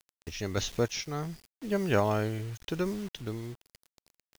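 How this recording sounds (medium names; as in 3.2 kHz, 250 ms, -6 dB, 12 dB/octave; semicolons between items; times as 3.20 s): a quantiser's noise floor 8-bit, dither none; random-step tremolo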